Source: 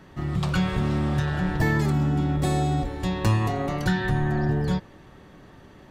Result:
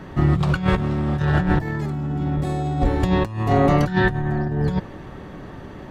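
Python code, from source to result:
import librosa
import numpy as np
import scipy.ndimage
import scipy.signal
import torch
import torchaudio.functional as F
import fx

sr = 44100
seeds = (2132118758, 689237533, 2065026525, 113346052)

y = fx.high_shelf(x, sr, hz=2700.0, db=-9.0)
y = fx.over_compress(y, sr, threshold_db=-27.0, ratio=-0.5)
y = y * librosa.db_to_amplitude(8.0)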